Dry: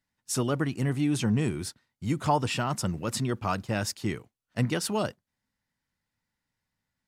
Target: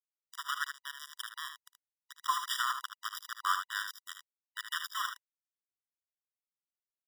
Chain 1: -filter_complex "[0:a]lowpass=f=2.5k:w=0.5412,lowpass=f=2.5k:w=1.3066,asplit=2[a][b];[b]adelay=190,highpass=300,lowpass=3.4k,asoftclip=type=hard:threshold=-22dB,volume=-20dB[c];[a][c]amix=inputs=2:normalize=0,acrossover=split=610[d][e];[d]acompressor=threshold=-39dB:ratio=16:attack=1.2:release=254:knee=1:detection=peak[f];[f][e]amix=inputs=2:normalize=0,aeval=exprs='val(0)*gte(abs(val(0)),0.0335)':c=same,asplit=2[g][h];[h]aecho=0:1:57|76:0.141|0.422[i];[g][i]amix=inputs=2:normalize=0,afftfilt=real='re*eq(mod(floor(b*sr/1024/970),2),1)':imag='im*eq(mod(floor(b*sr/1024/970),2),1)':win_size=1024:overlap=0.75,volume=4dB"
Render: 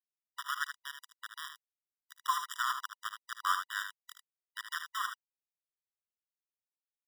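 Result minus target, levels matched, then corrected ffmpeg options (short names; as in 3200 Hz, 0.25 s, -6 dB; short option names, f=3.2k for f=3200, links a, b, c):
4000 Hz band -2.5 dB
-filter_complex "[0:a]lowpass=f=5k:w=0.5412,lowpass=f=5k:w=1.3066,asplit=2[a][b];[b]adelay=190,highpass=300,lowpass=3.4k,asoftclip=type=hard:threshold=-22dB,volume=-20dB[c];[a][c]amix=inputs=2:normalize=0,acrossover=split=610[d][e];[d]acompressor=threshold=-39dB:ratio=16:attack=1.2:release=254:knee=1:detection=peak[f];[f][e]amix=inputs=2:normalize=0,aeval=exprs='val(0)*gte(abs(val(0)),0.0335)':c=same,asplit=2[g][h];[h]aecho=0:1:57|76:0.141|0.422[i];[g][i]amix=inputs=2:normalize=0,afftfilt=real='re*eq(mod(floor(b*sr/1024/970),2),1)':imag='im*eq(mod(floor(b*sr/1024/970),2),1)':win_size=1024:overlap=0.75,volume=4dB"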